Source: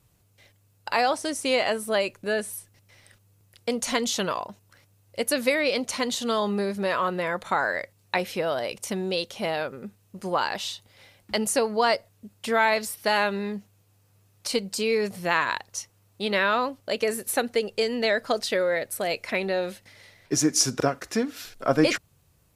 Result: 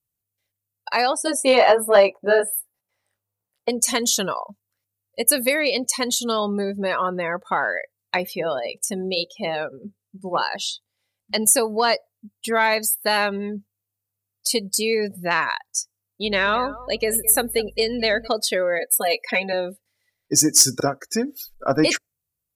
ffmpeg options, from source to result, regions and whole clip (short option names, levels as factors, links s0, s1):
-filter_complex "[0:a]asettb=1/sr,asplit=3[s0][s1][s2];[s0]atrim=end=1.264[s3];[s1]atrim=start=1.26:end=3.69,asetpts=PTS-STARTPTS,afade=t=in:d=0.004:c=qsin,afade=t=out:st=2.426:d=0.004:c=qsin,equalizer=f=790:t=o:w=2.4:g=14,flanger=delay=15:depth=6.2:speed=1.3[s4];[s2]atrim=start=3.686[s5];[s3][s4]acrossfade=d=0.004:c1=hsin:c2=qsin[s6];[s6][s5]acrossfade=d=0.004:c1=qsin:c2=hsin,asettb=1/sr,asplit=3[s7][s8][s9];[s7]atrim=end=8.284[s10];[s8]atrim=start=8.28:end=11.37,asetpts=PTS-STARTPTS,afade=t=in:d=0.004:c=qsin,afade=t=out:st=3.086:d=0.004:c=qsin,lowpass=12000,bandreject=f=60:t=h:w=6,bandreject=f=120:t=h:w=6,bandreject=f=180:t=h:w=6,bandreject=f=240:t=h:w=6,bandreject=f=300:t=h:w=6,bandreject=f=360:t=h:w=6,bandreject=f=420:t=h:w=6,bandreject=f=480:t=h:w=6,bandreject=f=540:t=h:w=6[s11];[s9]atrim=start=11.366[s12];[s10][s11]acrossfade=d=0.004:c1=hsin:c2=qsin[s13];[s13][s12]acrossfade=d=0.004:c1=qsin:c2=hsin,asettb=1/sr,asplit=3[s14][s15][s16];[s14]atrim=end=16.244[s17];[s15]atrim=start=16.24:end=18.28,asetpts=PTS-STARTPTS,afade=t=in:d=0.004:c=qsin,afade=t=out:st=2.036:d=0.004:c=qsin,aeval=exprs='val(0)+0.00708*(sin(2*PI*50*n/s)+sin(2*PI*2*50*n/s)/2+sin(2*PI*3*50*n/s)/3+sin(2*PI*4*50*n/s)/4+sin(2*PI*5*50*n/s)/5)':c=same,aecho=1:1:212|424|636:0.178|0.0427|0.0102,atrim=end_sample=89964[s18];[s16]atrim=start=18.276[s19];[s17][s18]acrossfade=d=0.004:c1=hsin:c2=qsin[s20];[s20][s19]acrossfade=d=0.004:c1=qsin:c2=hsin,asettb=1/sr,asplit=3[s21][s22][s23];[s21]atrim=end=18.794[s24];[s22]atrim=start=18.79:end=19.53,asetpts=PTS-STARTPTS,afade=t=in:d=0.004:c=qsin,afade=t=out:st=0.736:d=0.004:c=qsin,highpass=240,equalizer=f=11000:t=o:w=0.93:g=-2.5,aecho=1:1:4.1:0.93,atrim=end_sample=32634[s25];[s23]atrim=start=19.526[s26];[s24][s25]acrossfade=d=0.004:c1=hsin:c2=qsin[s27];[s27][s26]acrossfade=d=0.004:c1=qsin:c2=hsin,aemphasis=mode=production:type=50fm,afftdn=nr=28:nf=-32,acontrast=29,volume=0.75"